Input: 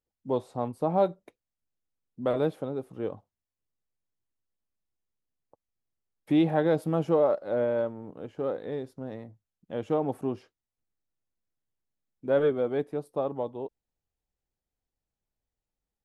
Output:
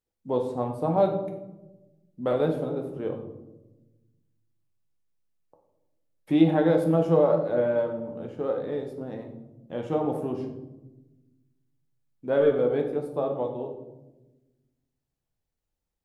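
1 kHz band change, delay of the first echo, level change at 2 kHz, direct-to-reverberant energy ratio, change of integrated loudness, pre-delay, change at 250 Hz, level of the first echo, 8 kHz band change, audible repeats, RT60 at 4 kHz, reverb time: +1.5 dB, no echo audible, +1.5 dB, 3.0 dB, +2.5 dB, 12 ms, +3.5 dB, no echo audible, can't be measured, no echo audible, 0.55 s, 1.1 s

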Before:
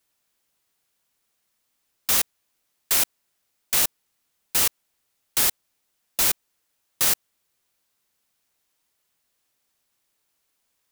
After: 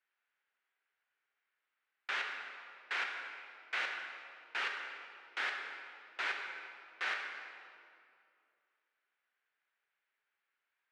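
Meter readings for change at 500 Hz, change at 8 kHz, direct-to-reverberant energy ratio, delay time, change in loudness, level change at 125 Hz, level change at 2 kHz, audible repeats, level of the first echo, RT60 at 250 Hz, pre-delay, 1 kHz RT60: −12.5 dB, −36.0 dB, 1.0 dB, no echo audible, −17.5 dB, below −35 dB, −1.5 dB, no echo audible, no echo audible, 2.7 s, 10 ms, 2.3 s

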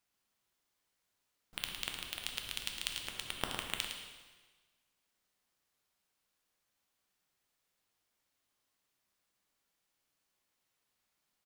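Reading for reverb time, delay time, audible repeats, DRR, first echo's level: 1.4 s, 109 ms, 1, 1.0 dB, −8.0 dB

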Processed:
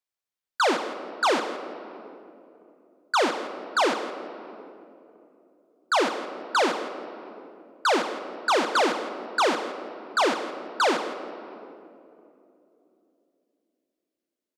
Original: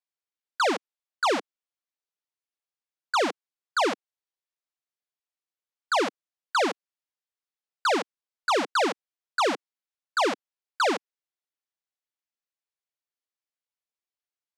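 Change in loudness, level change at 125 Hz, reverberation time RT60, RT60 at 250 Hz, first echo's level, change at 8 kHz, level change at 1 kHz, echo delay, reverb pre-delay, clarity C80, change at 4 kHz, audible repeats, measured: +1.0 dB, can't be measured, 3.0 s, 3.9 s, −14.0 dB, +2.0 dB, +2.5 dB, 167 ms, 8 ms, 9.0 dB, +2.0 dB, 1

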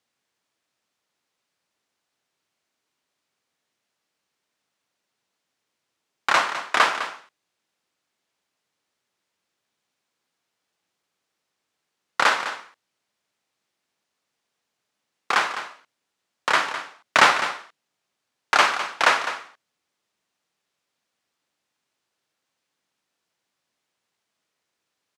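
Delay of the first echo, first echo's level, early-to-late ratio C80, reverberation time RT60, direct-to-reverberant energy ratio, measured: 206 ms, −11.5 dB, no reverb audible, no reverb audible, no reverb audible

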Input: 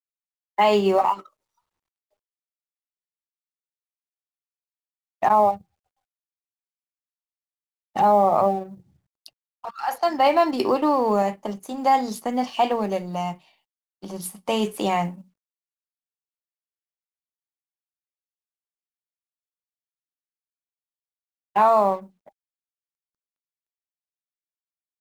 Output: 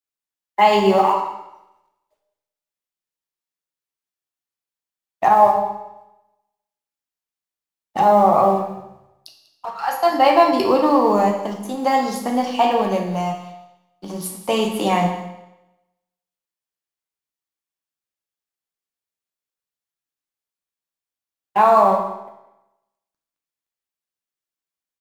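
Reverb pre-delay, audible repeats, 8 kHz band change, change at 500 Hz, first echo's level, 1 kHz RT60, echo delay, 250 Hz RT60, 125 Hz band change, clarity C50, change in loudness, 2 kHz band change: 10 ms, 1, +4.5 dB, +4.0 dB, −16.0 dB, 0.90 s, 194 ms, 0.90 s, +5.5 dB, 5.0 dB, +4.5 dB, +5.0 dB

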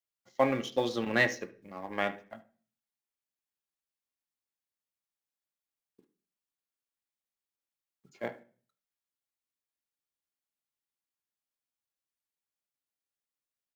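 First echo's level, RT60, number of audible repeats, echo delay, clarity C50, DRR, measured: −20.0 dB, 0.40 s, 1, 74 ms, 15.0 dB, 6.5 dB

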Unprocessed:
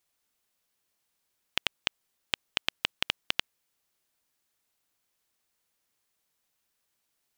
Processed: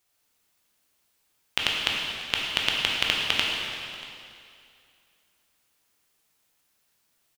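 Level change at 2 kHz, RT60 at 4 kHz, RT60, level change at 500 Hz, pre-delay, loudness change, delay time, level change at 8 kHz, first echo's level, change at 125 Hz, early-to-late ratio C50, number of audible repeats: +8.0 dB, 2.3 s, 2.5 s, +7.5 dB, 7 ms, +6.5 dB, 636 ms, +7.5 dB, −19.5 dB, +8.5 dB, 0.0 dB, 1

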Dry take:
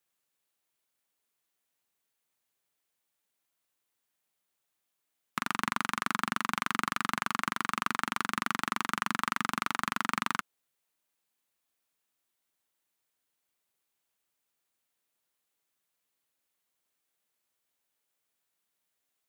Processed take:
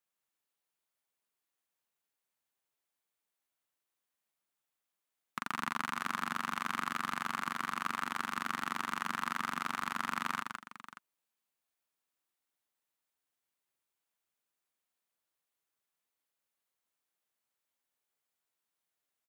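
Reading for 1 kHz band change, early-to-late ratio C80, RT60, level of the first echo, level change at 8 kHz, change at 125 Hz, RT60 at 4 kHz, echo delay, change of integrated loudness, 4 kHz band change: −4.0 dB, no reverb audible, no reverb audible, −4.5 dB, −6.5 dB, −6.5 dB, no reverb audible, 159 ms, −4.5 dB, −6.0 dB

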